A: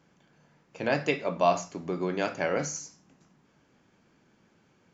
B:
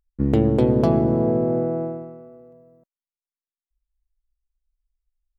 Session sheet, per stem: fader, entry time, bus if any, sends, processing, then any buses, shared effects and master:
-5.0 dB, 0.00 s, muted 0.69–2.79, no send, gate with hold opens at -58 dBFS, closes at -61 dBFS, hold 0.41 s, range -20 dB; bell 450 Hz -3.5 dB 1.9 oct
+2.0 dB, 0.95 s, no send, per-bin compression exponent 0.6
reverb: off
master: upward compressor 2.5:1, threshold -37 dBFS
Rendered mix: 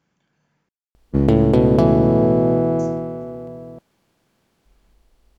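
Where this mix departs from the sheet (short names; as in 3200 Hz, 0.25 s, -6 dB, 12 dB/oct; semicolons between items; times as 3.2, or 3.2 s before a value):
stem A: missing gate with hold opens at -58 dBFS, closes at -61 dBFS, hold 0.41 s, range -20 dB; master: missing upward compressor 2.5:1, threshold -37 dBFS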